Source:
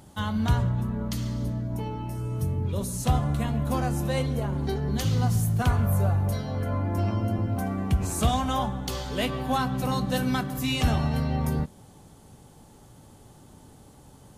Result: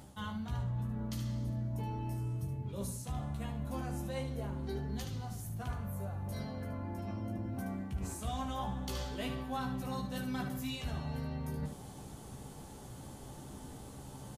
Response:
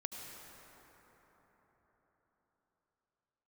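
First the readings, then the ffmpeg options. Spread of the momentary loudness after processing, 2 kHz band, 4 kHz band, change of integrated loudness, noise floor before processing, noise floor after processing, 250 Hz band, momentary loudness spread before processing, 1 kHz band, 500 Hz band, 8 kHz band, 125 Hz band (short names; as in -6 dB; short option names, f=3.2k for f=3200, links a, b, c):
11 LU, -12.0 dB, -12.0 dB, -12.5 dB, -52 dBFS, -49 dBFS, -11.0 dB, 6 LU, -12.5 dB, -12.0 dB, -11.5 dB, -12.5 dB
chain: -af "areverse,acompressor=threshold=-39dB:ratio=8,areverse,aecho=1:1:15|74:0.596|0.422,volume=1dB"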